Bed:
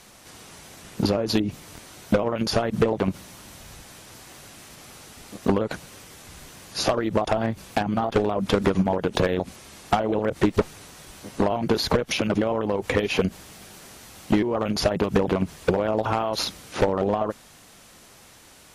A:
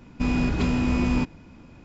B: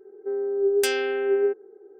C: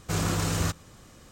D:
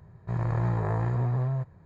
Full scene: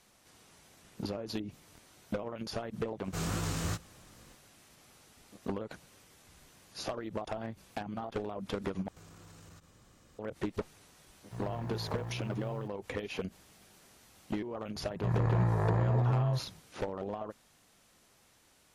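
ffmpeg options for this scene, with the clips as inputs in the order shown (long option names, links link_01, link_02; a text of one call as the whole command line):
ffmpeg -i bed.wav -i cue0.wav -i cue1.wav -i cue2.wav -i cue3.wav -filter_complex "[3:a]asplit=2[link_01][link_02];[4:a]asplit=2[link_03][link_04];[0:a]volume=-15dB[link_05];[link_01]flanger=delay=17:depth=7.7:speed=2.6[link_06];[link_02]acompressor=threshold=-41dB:ratio=12:attack=2.4:release=43:knee=1:detection=rms[link_07];[link_03]aeval=exprs='val(0)*gte(abs(val(0)),0.0112)':channel_layout=same[link_08];[link_05]asplit=2[link_09][link_10];[link_09]atrim=end=8.884[link_11];[link_07]atrim=end=1.31,asetpts=PTS-STARTPTS,volume=-10dB[link_12];[link_10]atrim=start=10.186[link_13];[link_06]atrim=end=1.31,asetpts=PTS-STARTPTS,volume=-4.5dB,afade=type=in:duration=0.004:curve=hsin,afade=type=out:start_time=1.306:duration=0.004:curve=hsin,adelay=3040[link_14];[link_08]atrim=end=1.85,asetpts=PTS-STARTPTS,volume=-13dB,afade=type=in:duration=0.004:curve=hsin,afade=type=out:start_time=1.846:duration=0.004:curve=hsin,adelay=11040[link_15];[link_04]atrim=end=1.85,asetpts=PTS-STARTPTS,volume=-1.5dB,afade=type=in:duration=0.004:curve=hsin,afade=type=out:start_time=1.846:duration=0.004:curve=hsin,adelay=14750[link_16];[link_11][link_12]acrossfade=duration=0.004:curve1=hsin:curve2=hsin[link_17];[link_17][link_13]acrossfade=duration=0.004:curve1=hsin:curve2=hsin[link_18];[link_18][link_14][link_15][link_16]amix=inputs=4:normalize=0" out.wav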